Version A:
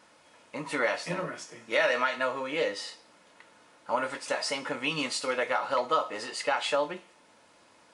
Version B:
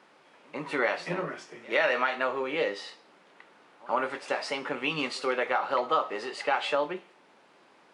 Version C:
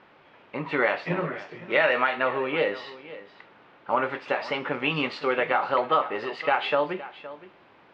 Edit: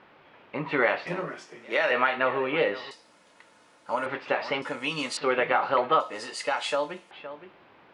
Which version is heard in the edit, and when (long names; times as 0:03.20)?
C
0:01.07–0:01.91: punch in from B
0:02.91–0:04.06: punch in from A
0:04.62–0:05.17: punch in from A
0:06.00–0:07.11: punch in from A